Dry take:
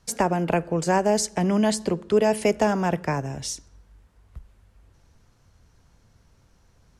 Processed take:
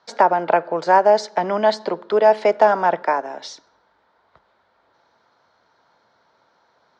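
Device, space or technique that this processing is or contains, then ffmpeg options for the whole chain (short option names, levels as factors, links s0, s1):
phone earpiece: -filter_complex "[0:a]asettb=1/sr,asplit=3[s0][s1][s2];[s0]atrim=end=3.024[s3];[s1]atrim=start=3.02:end=3.46,asetpts=PTS-STARTPTS,afade=t=in:d=0.004:c=qsin,afade=t=out:st=0.436:d=0.004:c=qsin,highpass=f=210:w=0.5412,highpass=f=210:w=1.3066[s4];[s2]atrim=start=3.456[s5];[s3][s4]acrossfade=d=0.004:c1=hsin:c2=qsin[s6];[s6][s5]acrossfade=d=0.004:c1=qsin:c2=hsin,highpass=440,equalizer=f=630:t=q:w=4:g=5,equalizer=f=910:t=q:w=4:g=7,equalizer=f=1400:t=q:w=4:g=5,equalizer=f=2700:t=q:w=4:g=-9,equalizer=f=4000:t=q:w=4:g=4,lowpass=f=4300:w=0.5412,lowpass=f=4300:w=1.3066,volume=1.68"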